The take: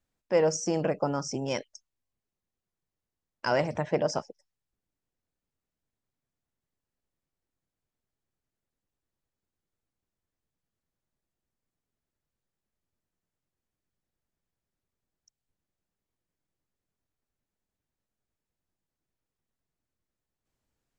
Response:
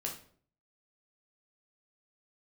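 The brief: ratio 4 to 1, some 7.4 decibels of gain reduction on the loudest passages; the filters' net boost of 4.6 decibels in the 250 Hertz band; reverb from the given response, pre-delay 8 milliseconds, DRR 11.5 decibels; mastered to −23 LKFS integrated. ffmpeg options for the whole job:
-filter_complex "[0:a]equalizer=frequency=250:width_type=o:gain=6.5,acompressor=threshold=-27dB:ratio=4,asplit=2[link_01][link_02];[1:a]atrim=start_sample=2205,adelay=8[link_03];[link_02][link_03]afir=irnorm=-1:irlink=0,volume=-12dB[link_04];[link_01][link_04]amix=inputs=2:normalize=0,volume=9dB"

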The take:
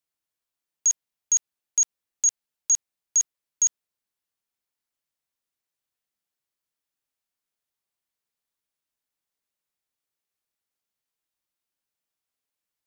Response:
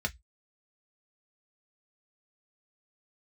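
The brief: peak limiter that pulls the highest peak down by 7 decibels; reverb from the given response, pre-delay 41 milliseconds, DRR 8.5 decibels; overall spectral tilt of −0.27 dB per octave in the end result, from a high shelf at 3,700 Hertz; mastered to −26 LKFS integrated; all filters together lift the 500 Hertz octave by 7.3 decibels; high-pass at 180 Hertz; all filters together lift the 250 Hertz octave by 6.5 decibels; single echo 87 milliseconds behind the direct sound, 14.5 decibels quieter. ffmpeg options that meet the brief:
-filter_complex "[0:a]highpass=180,equalizer=frequency=250:width_type=o:gain=7.5,equalizer=frequency=500:width_type=o:gain=7.5,highshelf=frequency=3700:gain=-8.5,alimiter=level_in=2dB:limit=-24dB:level=0:latency=1,volume=-2dB,aecho=1:1:87:0.188,asplit=2[link_01][link_02];[1:a]atrim=start_sample=2205,adelay=41[link_03];[link_02][link_03]afir=irnorm=-1:irlink=0,volume=-14dB[link_04];[link_01][link_04]amix=inputs=2:normalize=0,volume=9dB"

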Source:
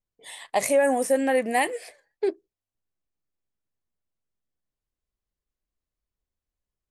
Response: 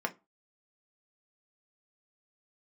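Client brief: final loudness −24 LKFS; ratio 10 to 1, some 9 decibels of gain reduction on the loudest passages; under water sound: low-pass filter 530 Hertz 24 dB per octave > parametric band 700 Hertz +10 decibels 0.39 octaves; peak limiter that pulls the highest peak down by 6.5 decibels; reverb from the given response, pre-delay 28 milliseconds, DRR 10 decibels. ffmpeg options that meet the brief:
-filter_complex "[0:a]acompressor=threshold=-26dB:ratio=10,alimiter=limit=-22dB:level=0:latency=1,asplit=2[link_01][link_02];[1:a]atrim=start_sample=2205,adelay=28[link_03];[link_02][link_03]afir=irnorm=-1:irlink=0,volume=-16dB[link_04];[link_01][link_04]amix=inputs=2:normalize=0,lowpass=frequency=530:width=0.5412,lowpass=frequency=530:width=1.3066,equalizer=frequency=700:width_type=o:width=0.39:gain=10,volume=11dB"

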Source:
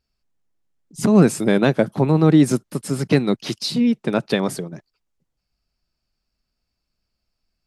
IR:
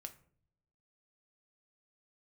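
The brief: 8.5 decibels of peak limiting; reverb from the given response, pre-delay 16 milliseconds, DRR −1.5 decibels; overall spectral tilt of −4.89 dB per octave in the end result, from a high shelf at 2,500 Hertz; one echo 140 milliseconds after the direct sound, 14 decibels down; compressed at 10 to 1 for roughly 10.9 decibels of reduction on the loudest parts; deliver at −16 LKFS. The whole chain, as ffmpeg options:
-filter_complex "[0:a]highshelf=frequency=2500:gain=3.5,acompressor=threshold=-19dB:ratio=10,alimiter=limit=-16.5dB:level=0:latency=1,aecho=1:1:140:0.2,asplit=2[link_01][link_02];[1:a]atrim=start_sample=2205,adelay=16[link_03];[link_02][link_03]afir=irnorm=-1:irlink=0,volume=6.5dB[link_04];[link_01][link_04]amix=inputs=2:normalize=0,volume=7.5dB"

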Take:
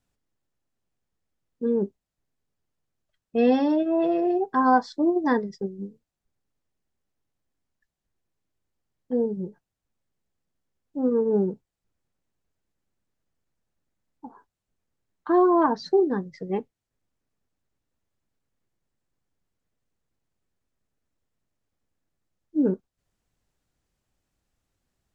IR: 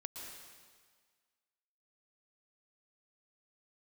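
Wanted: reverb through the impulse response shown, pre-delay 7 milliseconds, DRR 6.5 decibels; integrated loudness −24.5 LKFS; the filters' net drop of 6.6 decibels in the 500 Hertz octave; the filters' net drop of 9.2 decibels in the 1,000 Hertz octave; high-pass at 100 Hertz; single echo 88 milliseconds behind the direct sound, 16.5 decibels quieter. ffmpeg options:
-filter_complex "[0:a]highpass=100,equalizer=frequency=500:width_type=o:gain=-7.5,equalizer=frequency=1000:width_type=o:gain=-9,aecho=1:1:88:0.15,asplit=2[link_01][link_02];[1:a]atrim=start_sample=2205,adelay=7[link_03];[link_02][link_03]afir=irnorm=-1:irlink=0,volume=-4dB[link_04];[link_01][link_04]amix=inputs=2:normalize=0,volume=4dB"

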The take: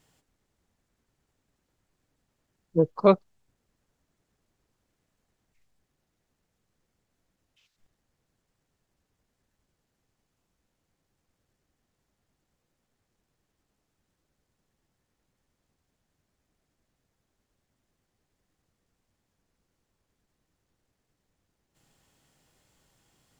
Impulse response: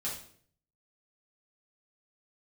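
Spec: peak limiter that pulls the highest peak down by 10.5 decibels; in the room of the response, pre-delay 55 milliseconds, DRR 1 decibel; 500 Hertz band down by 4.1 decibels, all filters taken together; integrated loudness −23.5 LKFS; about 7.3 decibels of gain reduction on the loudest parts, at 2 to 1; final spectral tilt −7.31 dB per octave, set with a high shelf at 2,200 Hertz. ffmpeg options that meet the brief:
-filter_complex "[0:a]equalizer=frequency=500:width_type=o:gain=-5.5,highshelf=frequency=2200:gain=6.5,acompressor=threshold=-28dB:ratio=2,alimiter=level_in=1dB:limit=-24dB:level=0:latency=1,volume=-1dB,asplit=2[link_01][link_02];[1:a]atrim=start_sample=2205,adelay=55[link_03];[link_02][link_03]afir=irnorm=-1:irlink=0,volume=-3.5dB[link_04];[link_01][link_04]amix=inputs=2:normalize=0,volume=12.5dB"

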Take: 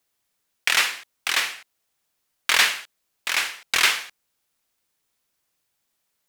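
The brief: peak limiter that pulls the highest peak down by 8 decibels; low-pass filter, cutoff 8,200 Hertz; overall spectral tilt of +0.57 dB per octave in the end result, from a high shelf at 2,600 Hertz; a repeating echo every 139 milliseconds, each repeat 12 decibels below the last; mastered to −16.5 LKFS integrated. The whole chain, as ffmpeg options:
ffmpeg -i in.wav -af "lowpass=8200,highshelf=frequency=2600:gain=7,alimiter=limit=-5.5dB:level=0:latency=1,aecho=1:1:139|278|417:0.251|0.0628|0.0157,volume=4dB" out.wav

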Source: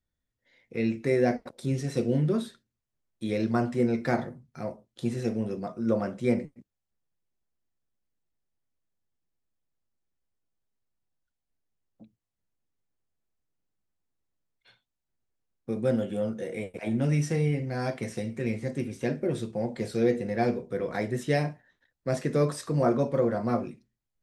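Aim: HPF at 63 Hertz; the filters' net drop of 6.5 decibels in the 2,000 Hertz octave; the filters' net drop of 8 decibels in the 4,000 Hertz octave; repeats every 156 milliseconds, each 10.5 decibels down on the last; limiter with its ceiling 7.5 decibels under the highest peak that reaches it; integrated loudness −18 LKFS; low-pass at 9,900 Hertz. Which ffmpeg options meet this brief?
ffmpeg -i in.wav -af "highpass=63,lowpass=9900,equalizer=frequency=2000:width_type=o:gain=-6,equalizer=frequency=4000:width_type=o:gain=-9,alimiter=limit=-20dB:level=0:latency=1,aecho=1:1:156|312|468:0.299|0.0896|0.0269,volume=13dB" out.wav

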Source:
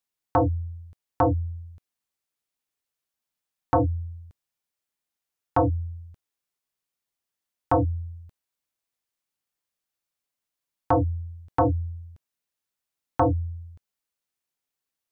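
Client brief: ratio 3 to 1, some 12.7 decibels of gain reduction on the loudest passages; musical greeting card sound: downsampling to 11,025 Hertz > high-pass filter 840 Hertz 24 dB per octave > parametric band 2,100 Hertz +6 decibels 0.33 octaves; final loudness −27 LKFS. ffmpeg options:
ffmpeg -i in.wav -af "acompressor=threshold=-35dB:ratio=3,aresample=11025,aresample=44100,highpass=frequency=840:width=0.5412,highpass=frequency=840:width=1.3066,equalizer=frequency=2100:width_type=o:width=0.33:gain=6,volume=16.5dB" out.wav

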